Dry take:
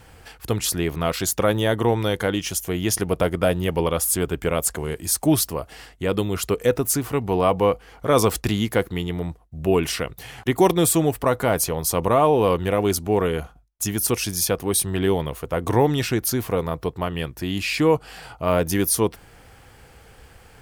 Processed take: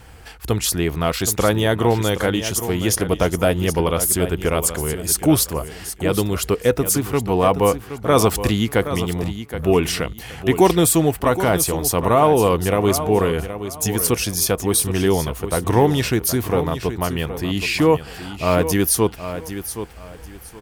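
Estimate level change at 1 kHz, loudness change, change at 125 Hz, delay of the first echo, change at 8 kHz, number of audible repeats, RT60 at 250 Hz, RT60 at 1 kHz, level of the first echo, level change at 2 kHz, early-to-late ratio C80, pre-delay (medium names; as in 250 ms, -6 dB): +3.0 dB, +3.0 dB, +4.0 dB, 771 ms, +3.5 dB, 2, no reverb, no reverb, -11.0 dB, +3.5 dB, no reverb, no reverb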